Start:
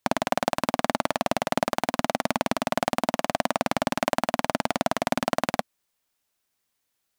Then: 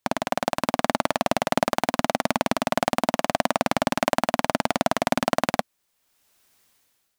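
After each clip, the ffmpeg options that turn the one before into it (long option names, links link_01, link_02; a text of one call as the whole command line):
ffmpeg -i in.wav -af "dynaudnorm=framelen=170:gausssize=7:maxgain=16dB,volume=-1dB" out.wav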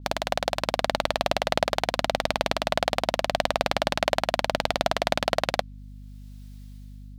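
ffmpeg -i in.wav -af "equalizer=frequency=250:width_type=o:width=1:gain=-10,equalizer=frequency=500:width_type=o:width=1:gain=4,equalizer=frequency=1000:width_type=o:width=1:gain=-4,equalizer=frequency=4000:width_type=o:width=1:gain=7,aeval=exprs='val(0)+0.01*(sin(2*PI*50*n/s)+sin(2*PI*2*50*n/s)/2+sin(2*PI*3*50*n/s)/3+sin(2*PI*4*50*n/s)/4+sin(2*PI*5*50*n/s)/5)':channel_layout=same,adynamicequalizer=threshold=0.00631:dfrequency=5300:dqfactor=0.7:tfrequency=5300:tqfactor=0.7:attack=5:release=100:ratio=0.375:range=3.5:mode=cutabove:tftype=highshelf,volume=-1dB" out.wav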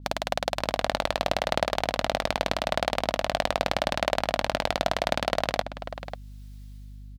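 ffmpeg -i in.wav -filter_complex "[0:a]asplit=2[link_01][link_02];[link_02]adelay=542.3,volume=-10dB,highshelf=frequency=4000:gain=-12.2[link_03];[link_01][link_03]amix=inputs=2:normalize=0,volume=-1.5dB" out.wav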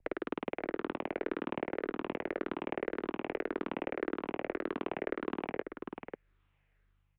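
ffmpeg -i in.wav -filter_complex "[0:a]afftfilt=real='re*pow(10,7/40*sin(2*PI*(0.7*log(max(b,1)*sr/1024/100)/log(2)-(-1.8)*(pts-256)/sr)))':imag='im*pow(10,7/40*sin(2*PI*(0.7*log(max(b,1)*sr/1024/100)/log(2)-(-1.8)*(pts-256)/sr)))':win_size=1024:overlap=0.75,highpass=frequency=300:width_type=q:width=0.5412,highpass=frequency=300:width_type=q:width=1.307,lowpass=frequency=2700:width_type=q:width=0.5176,lowpass=frequency=2700:width_type=q:width=0.7071,lowpass=frequency=2700:width_type=q:width=1.932,afreqshift=-290,acrossover=split=140|750[link_01][link_02][link_03];[link_01]acompressor=threshold=-54dB:ratio=4[link_04];[link_02]acompressor=threshold=-26dB:ratio=4[link_05];[link_03]acompressor=threshold=-34dB:ratio=4[link_06];[link_04][link_05][link_06]amix=inputs=3:normalize=0,volume=-5.5dB" out.wav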